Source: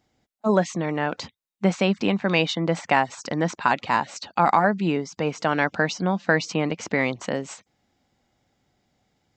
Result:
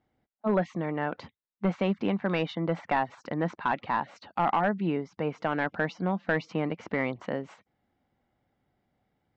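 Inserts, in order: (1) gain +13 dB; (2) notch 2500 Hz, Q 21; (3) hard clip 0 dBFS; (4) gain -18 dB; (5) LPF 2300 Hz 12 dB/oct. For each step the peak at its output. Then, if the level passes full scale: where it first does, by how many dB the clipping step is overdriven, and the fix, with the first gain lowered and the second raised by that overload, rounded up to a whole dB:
+8.0, +8.0, 0.0, -18.0, -17.5 dBFS; step 1, 8.0 dB; step 1 +5 dB, step 4 -10 dB

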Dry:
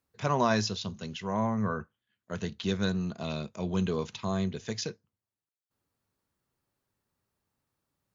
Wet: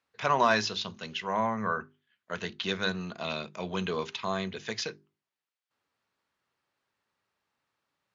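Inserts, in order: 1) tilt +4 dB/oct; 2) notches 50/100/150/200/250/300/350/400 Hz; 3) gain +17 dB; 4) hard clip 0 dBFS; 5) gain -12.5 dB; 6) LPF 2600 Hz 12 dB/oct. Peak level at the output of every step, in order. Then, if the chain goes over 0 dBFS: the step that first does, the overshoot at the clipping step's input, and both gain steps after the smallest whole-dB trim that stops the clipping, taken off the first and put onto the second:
-10.0, -10.0, +7.0, 0.0, -12.5, -12.0 dBFS; step 3, 7.0 dB; step 3 +10 dB, step 5 -5.5 dB

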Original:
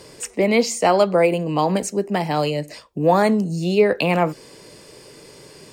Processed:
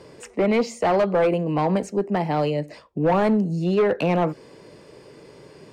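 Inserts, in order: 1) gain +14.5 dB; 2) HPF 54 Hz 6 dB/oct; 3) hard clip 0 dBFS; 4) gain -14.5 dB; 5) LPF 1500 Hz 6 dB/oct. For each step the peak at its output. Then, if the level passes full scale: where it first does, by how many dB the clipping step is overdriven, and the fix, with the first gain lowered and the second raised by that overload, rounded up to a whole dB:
+10.0, +9.5, 0.0, -14.5, -14.5 dBFS; step 1, 9.5 dB; step 1 +4.5 dB, step 4 -4.5 dB

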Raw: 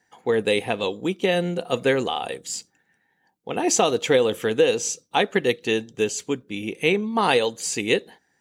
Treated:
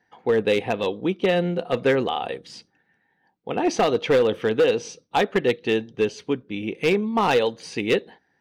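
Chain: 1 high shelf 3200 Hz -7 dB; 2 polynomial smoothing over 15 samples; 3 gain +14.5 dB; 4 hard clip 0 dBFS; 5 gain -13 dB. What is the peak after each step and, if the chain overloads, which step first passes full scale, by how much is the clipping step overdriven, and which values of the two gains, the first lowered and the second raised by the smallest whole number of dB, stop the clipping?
-5.0, -5.0, +9.5, 0.0, -13.0 dBFS; step 3, 9.5 dB; step 3 +4.5 dB, step 5 -3 dB

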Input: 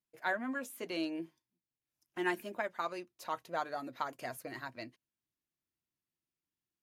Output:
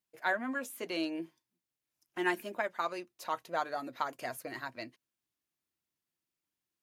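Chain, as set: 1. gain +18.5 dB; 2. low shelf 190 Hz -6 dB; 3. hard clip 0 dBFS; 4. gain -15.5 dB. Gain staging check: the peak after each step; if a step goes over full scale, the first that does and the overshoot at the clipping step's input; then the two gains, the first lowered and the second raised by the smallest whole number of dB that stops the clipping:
-2.5, -2.0, -2.0, -17.5 dBFS; no overload

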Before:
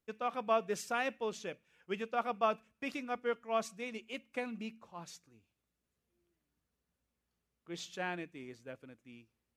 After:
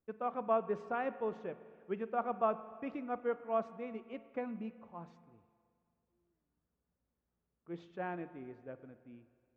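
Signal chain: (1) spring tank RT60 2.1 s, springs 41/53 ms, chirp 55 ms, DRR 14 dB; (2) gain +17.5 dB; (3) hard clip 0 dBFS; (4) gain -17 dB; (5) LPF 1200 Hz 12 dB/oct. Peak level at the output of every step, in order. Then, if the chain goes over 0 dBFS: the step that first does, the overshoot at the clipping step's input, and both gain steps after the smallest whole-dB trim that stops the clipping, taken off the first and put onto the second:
-19.0, -1.5, -1.5, -18.5, -19.0 dBFS; no overload

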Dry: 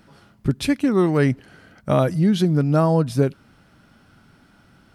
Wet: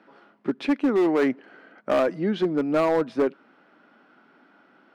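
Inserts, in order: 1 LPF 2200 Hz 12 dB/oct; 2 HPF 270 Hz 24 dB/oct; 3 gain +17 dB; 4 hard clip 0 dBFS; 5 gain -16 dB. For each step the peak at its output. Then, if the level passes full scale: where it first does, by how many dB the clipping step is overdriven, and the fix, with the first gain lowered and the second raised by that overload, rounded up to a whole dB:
-6.0, -8.0, +9.0, 0.0, -16.0 dBFS; step 3, 9.0 dB; step 3 +8 dB, step 5 -7 dB

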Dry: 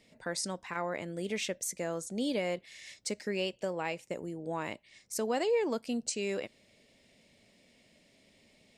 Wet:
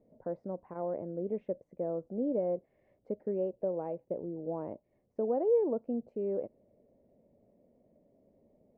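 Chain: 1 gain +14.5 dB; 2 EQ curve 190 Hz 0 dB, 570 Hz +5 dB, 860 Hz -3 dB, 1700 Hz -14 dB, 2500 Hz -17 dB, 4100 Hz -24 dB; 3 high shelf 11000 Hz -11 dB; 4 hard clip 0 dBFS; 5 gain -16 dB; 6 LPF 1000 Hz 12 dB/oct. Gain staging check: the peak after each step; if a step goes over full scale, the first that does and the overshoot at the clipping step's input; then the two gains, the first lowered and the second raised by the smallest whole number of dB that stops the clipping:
-5.5, -3.0, -3.0, -3.0, -19.0, -19.5 dBFS; no overload

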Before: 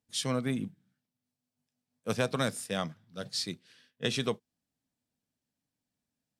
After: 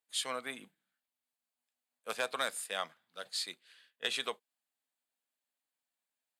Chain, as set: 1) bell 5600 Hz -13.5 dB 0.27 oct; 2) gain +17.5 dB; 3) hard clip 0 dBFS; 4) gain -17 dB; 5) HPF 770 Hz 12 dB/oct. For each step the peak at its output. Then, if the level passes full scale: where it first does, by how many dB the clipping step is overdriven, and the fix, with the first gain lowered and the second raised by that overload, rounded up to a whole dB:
-12.5, +5.0, 0.0, -17.0, -18.0 dBFS; step 2, 5.0 dB; step 2 +12.5 dB, step 4 -12 dB

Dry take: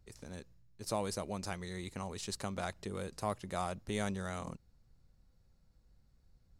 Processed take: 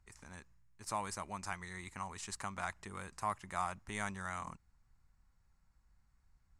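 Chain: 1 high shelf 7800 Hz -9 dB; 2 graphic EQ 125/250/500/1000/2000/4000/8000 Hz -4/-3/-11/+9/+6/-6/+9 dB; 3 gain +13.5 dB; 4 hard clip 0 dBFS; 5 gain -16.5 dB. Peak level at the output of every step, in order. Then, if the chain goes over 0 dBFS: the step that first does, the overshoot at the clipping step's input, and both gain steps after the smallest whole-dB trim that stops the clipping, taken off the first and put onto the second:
-22.0, -19.0, -5.5, -5.5, -22.0 dBFS; no overload

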